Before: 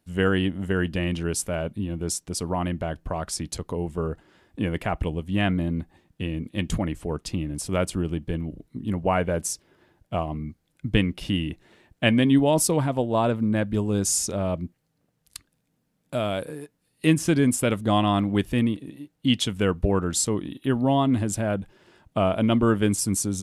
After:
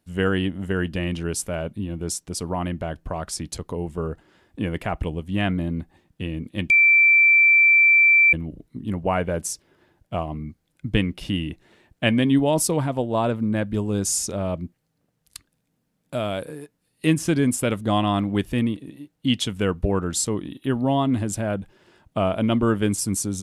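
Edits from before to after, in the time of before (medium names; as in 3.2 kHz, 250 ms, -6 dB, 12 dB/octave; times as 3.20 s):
6.70–8.33 s: bleep 2.34 kHz -11.5 dBFS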